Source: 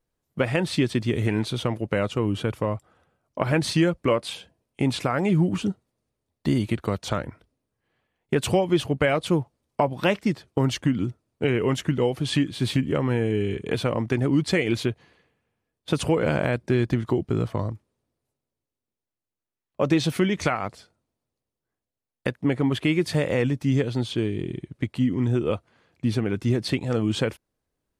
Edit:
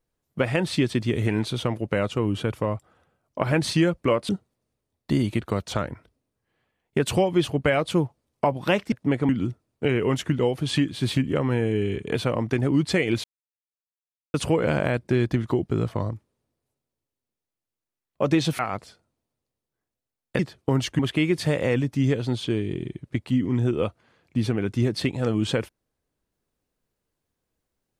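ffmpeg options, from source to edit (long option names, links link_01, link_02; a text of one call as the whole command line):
ffmpeg -i in.wav -filter_complex "[0:a]asplit=9[link_01][link_02][link_03][link_04][link_05][link_06][link_07][link_08][link_09];[link_01]atrim=end=4.292[link_10];[link_02]atrim=start=5.648:end=10.282[link_11];[link_03]atrim=start=22.298:end=22.672[link_12];[link_04]atrim=start=10.878:end=14.83,asetpts=PTS-STARTPTS,afade=type=out:start_time=3.948:duration=0.004:curve=hsin[link_13];[link_05]atrim=start=14.83:end=15.93,asetpts=PTS-STARTPTS,volume=0[link_14];[link_06]atrim=start=15.93:end=20.182,asetpts=PTS-STARTPTS,afade=type=in:duration=0.004:curve=hsin[link_15];[link_07]atrim=start=20.498:end=22.302[link_16];[link_08]atrim=start=10.278:end=10.882[link_17];[link_09]atrim=start=22.668[link_18];[link_10][link_11]acrossfade=duration=0.004:curve1=hsin:curve2=hsin[link_19];[link_19][link_12]acrossfade=duration=0.004:curve1=hsin:curve2=hsin[link_20];[link_13][link_14][link_15]concat=n=3:v=0:a=1[link_21];[link_20][link_21]acrossfade=duration=0.004:curve1=hsin:curve2=hsin[link_22];[link_22][link_16]acrossfade=duration=0.004:curve1=hsin:curve2=hsin[link_23];[link_23][link_17]acrossfade=duration=0.004:curve1=hsin:curve2=hsin[link_24];[link_24][link_18]acrossfade=duration=0.004:curve1=hsin:curve2=hsin" out.wav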